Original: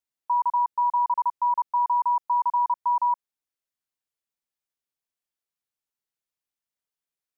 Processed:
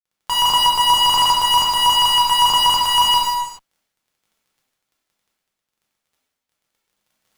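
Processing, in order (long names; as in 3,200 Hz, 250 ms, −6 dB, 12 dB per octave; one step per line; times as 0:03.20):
gain on one half-wave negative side −7 dB
parametric band 820 Hz −3 dB 1.1 octaves
fuzz pedal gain 54 dB, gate −58 dBFS
surface crackle 20 per second −47 dBFS
reverb whose tail is shaped and stops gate 460 ms falling, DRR −6 dB
level −4.5 dB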